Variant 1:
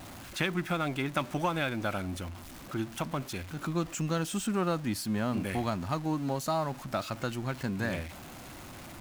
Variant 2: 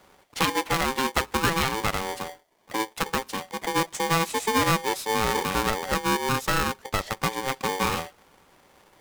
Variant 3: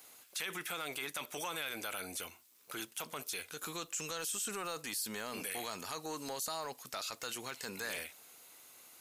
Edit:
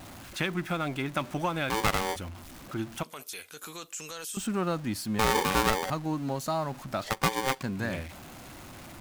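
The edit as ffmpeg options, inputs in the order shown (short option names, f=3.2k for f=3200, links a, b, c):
-filter_complex "[1:a]asplit=3[a][b][c];[0:a]asplit=5[d][e][f][g][h];[d]atrim=end=1.702[i];[a]atrim=start=1.698:end=2.162[j];[e]atrim=start=2.158:end=3.032[k];[2:a]atrim=start=3.028:end=4.372[l];[f]atrim=start=4.368:end=5.192[m];[b]atrim=start=5.188:end=5.902[n];[g]atrim=start=5.898:end=7.042[o];[c]atrim=start=7.038:end=7.622[p];[h]atrim=start=7.618[q];[i][j]acrossfade=d=0.004:c1=hsin:c2=hsin[r];[r][k]acrossfade=d=0.004:c1=hsin:c2=hsin[s];[s][l]acrossfade=d=0.004:c1=hsin:c2=hsin[t];[t][m]acrossfade=d=0.004:c1=hsin:c2=hsin[u];[u][n]acrossfade=d=0.004:c1=hsin:c2=hsin[v];[v][o]acrossfade=d=0.004:c1=hsin:c2=hsin[w];[w][p]acrossfade=d=0.004:c1=hsin:c2=hsin[x];[x][q]acrossfade=d=0.004:c1=hsin:c2=hsin"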